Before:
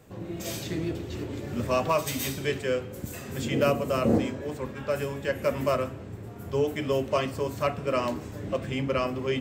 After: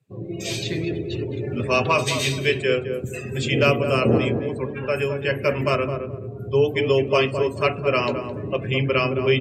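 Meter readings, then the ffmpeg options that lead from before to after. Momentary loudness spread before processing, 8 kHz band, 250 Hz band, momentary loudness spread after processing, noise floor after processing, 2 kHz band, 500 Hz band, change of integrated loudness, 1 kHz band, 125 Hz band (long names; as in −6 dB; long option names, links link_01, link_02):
10 LU, +3.5 dB, +4.0 dB, 9 LU, −34 dBFS, +10.5 dB, +6.5 dB, +6.5 dB, +5.0 dB, +8.0 dB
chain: -filter_complex "[0:a]highpass=74,aemphasis=mode=reproduction:type=75fm,crystalizer=i=8:c=0,afftdn=noise_reduction=29:noise_floor=-37,equalizer=frequency=125:width_type=o:width=0.33:gain=12,equalizer=frequency=400:width_type=o:width=0.33:gain=8,equalizer=frequency=2500:width_type=o:width=0.33:gain=7,equalizer=frequency=4000:width_type=o:width=0.33:gain=6,equalizer=frequency=10000:width_type=o:width=0.33:gain=7,asplit=2[link_01][link_02];[link_02]adelay=214,lowpass=frequency=830:poles=1,volume=-5.5dB,asplit=2[link_03][link_04];[link_04]adelay=214,lowpass=frequency=830:poles=1,volume=0.33,asplit=2[link_05][link_06];[link_06]adelay=214,lowpass=frequency=830:poles=1,volume=0.33,asplit=2[link_07][link_08];[link_08]adelay=214,lowpass=frequency=830:poles=1,volume=0.33[link_09];[link_01][link_03][link_05][link_07][link_09]amix=inputs=5:normalize=0,acrossover=split=7900[link_10][link_11];[link_11]acompressor=threshold=-51dB:ratio=4:attack=1:release=60[link_12];[link_10][link_12]amix=inputs=2:normalize=0"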